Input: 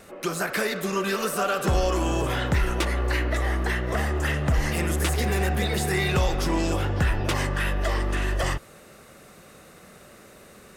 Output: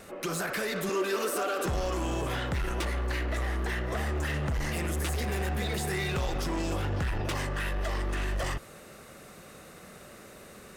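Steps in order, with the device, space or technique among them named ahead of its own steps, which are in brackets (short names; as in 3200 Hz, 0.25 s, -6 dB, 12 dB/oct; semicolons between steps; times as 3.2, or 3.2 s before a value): limiter into clipper (limiter -22 dBFS, peak gain reduction 6.5 dB; hard clip -26.5 dBFS, distortion -15 dB); 0.89–1.66 resonant low shelf 210 Hz -11.5 dB, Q 3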